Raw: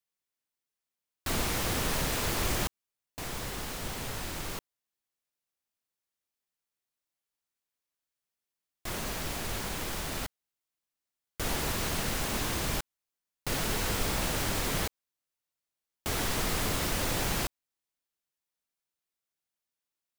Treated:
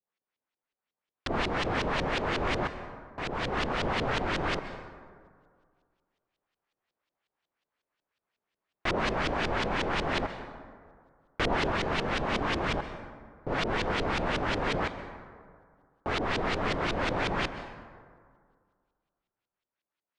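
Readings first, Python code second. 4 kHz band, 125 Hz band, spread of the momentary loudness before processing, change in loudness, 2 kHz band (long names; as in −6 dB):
−0.5 dB, +0.5 dB, 10 LU, +1.5 dB, +5.0 dB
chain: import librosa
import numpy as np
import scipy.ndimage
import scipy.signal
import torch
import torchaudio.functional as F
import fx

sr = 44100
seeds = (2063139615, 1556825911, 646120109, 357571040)

y = scipy.signal.sosfilt(scipy.signal.ellip(4, 1.0, 40, 9300.0, 'lowpass', fs=sr, output='sos'), x)
y = fx.low_shelf(y, sr, hz=190.0, db=-8.0)
y = fx.rider(y, sr, range_db=10, speed_s=0.5)
y = fx.filter_lfo_lowpass(y, sr, shape='saw_up', hz=5.5, low_hz=390.0, high_hz=3800.0, q=1.3)
y = fx.rev_plate(y, sr, seeds[0], rt60_s=2.0, hf_ratio=0.4, predelay_ms=115, drr_db=10.5)
y = fx.doppler_dist(y, sr, depth_ms=0.16)
y = F.gain(torch.from_numpy(y), 7.5).numpy()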